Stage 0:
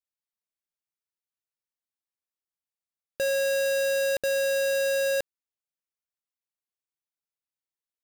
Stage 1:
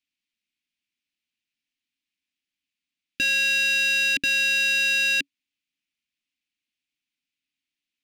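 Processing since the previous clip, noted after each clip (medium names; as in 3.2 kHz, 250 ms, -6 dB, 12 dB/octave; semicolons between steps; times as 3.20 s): FFT filter 140 Hz 0 dB, 280 Hz +12 dB, 590 Hz -29 dB, 2.5 kHz +14 dB, 14 kHz -10 dB; trim +3.5 dB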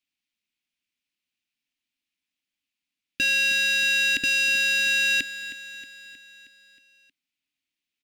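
feedback delay 315 ms, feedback 57%, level -13.5 dB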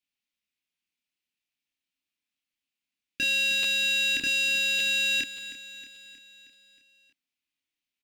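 doubling 29 ms -3.5 dB; crackling interface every 0.58 s, samples 512, repeat, from 0.72 s; trim -4.5 dB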